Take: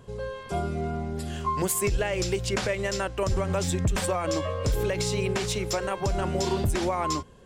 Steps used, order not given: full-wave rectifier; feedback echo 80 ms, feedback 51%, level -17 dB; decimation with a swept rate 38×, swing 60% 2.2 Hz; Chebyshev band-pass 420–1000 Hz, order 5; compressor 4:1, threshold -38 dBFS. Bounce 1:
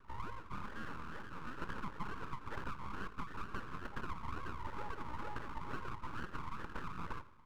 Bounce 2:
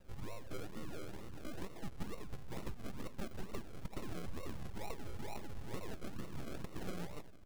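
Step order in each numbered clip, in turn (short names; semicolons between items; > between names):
decimation with a swept rate > Chebyshev band-pass > compressor > feedback echo > full-wave rectifier; Chebyshev band-pass > full-wave rectifier > feedback echo > compressor > decimation with a swept rate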